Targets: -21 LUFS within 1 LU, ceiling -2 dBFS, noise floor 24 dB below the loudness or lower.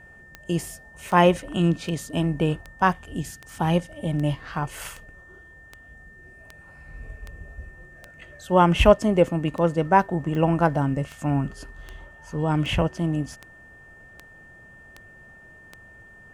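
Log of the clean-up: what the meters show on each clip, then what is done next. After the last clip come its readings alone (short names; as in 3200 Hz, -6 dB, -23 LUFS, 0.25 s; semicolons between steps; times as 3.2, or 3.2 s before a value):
clicks 21; steady tone 1800 Hz; tone level -47 dBFS; loudness -23.0 LUFS; peak -2.5 dBFS; loudness target -21.0 LUFS
-> de-click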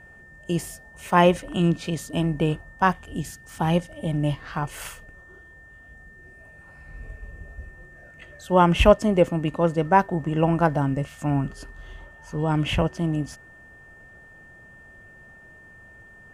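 clicks 0; steady tone 1800 Hz; tone level -47 dBFS
-> notch 1800 Hz, Q 30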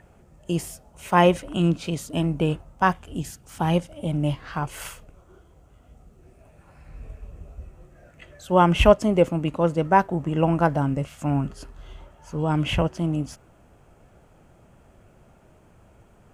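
steady tone none; loudness -23.0 LUFS; peak -2.5 dBFS; loudness target -21.0 LUFS
-> gain +2 dB; limiter -2 dBFS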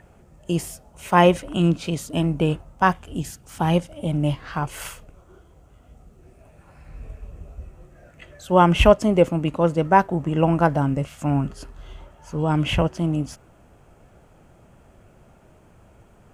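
loudness -21.5 LUFS; peak -2.0 dBFS; noise floor -53 dBFS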